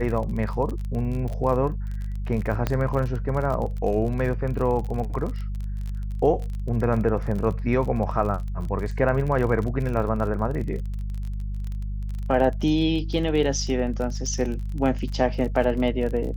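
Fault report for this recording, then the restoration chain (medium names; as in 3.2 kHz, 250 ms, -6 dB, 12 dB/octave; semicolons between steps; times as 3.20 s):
crackle 36 per s -30 dBFS
hum 50 Hz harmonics 4 -29 dBFS
2.67 s: pop -10 dBFS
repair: de-click; de-hum 50 Hz, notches 4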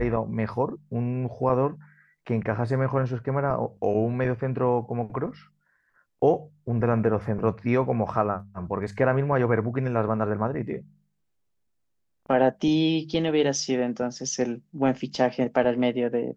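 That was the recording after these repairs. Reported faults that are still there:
nothing left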